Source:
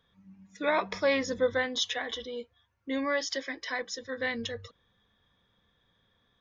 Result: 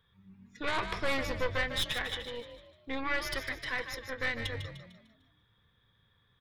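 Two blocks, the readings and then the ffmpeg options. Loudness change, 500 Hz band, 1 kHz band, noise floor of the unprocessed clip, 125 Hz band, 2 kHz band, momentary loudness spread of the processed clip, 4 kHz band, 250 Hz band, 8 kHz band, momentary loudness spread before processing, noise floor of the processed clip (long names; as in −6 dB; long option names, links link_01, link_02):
−3.0 dB, −7.5 dB, −2.5 dB, −72 dBFS, +8.0 dB, −0.5 dB, 12 LU, −1.5 dB, −6.5 dB, can't be measured, 11 LU, −70 dBFS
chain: -filter_complex "[0:a]aeval=exprs='0.178*(cos(1*acos(clip(val(0)/0.178,-1,1)))-cos(1*PI/2))+0.0224*(cos(5*acos(clip(val(0)/0.178,-1,1)))-cos(5*PI/2))+0.0355*(cos(6*acos(clip(val(0)/0.178,-1,1)))-cos(6*PI/2))':channel_layout=same,tremolo=f=200:d=0.182,equalizer=frequency=100:width_type=o:width=0.67:gain=7,equalizer=frequency=250:width_type=o:width=0.67:gain=-9,equalizer=frequency=630:width_type=o:width=0.67:gain=-9,equalizer=frequency=6300:width_type=o:width=0.67:gain=-11,asplit=2[link_01][link_02];[link_02]asplit=5[link_03][link_04][link_05][link_06][link_07];[link_03]adelay=150,afreqshift=41,volume=-9dB[link_08];[link_04]adelay=300,afreqshift=82,volume=-16.7dB[link_09];[link_05]adelay=450,afreqshift=123,volume=-24.5dB[link_10];[link_06]adelay=600,afreqshift=164,volume=-32.2dB[link_11];[link_07]adelay=750,afreqshift=205,volume=-40dB[link_12];[link_08][link_09][link_10][link_11][link_12]amix=inputs=5:normalize=0[link_13];[link_01][link_13]amix=inputs=2:normalize=0,volume=-2.5dB"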